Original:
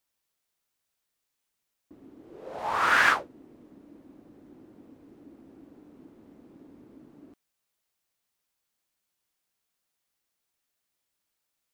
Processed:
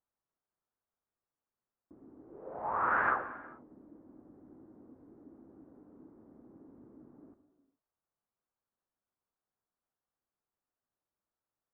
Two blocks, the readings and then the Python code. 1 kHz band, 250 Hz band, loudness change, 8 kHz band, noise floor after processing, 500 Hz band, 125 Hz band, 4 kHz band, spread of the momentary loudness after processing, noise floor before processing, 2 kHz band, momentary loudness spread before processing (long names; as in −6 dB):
−5.0 dB, −4.5 dB, −9.0 dB, below −30 dB, below −85 dBFS, −4.0 dB, −4.0 dB, below −30 dB, 21 LU, −82 dBFS, −10.5 dB, 16 LU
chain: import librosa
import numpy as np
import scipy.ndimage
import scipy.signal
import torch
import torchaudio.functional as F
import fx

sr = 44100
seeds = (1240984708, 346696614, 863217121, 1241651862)

y = scipy.signal.sosfilt(scipy.signal.butter(4, 1400.0, 'lowpass', fs=sr, output='sos'), x)
y = fx.rev_gated(y, sr, seeds[0], gate_ms=470, shape='falling', drr_db=9.0)
y = y * 10.0 ** (-4.5 / 20.0)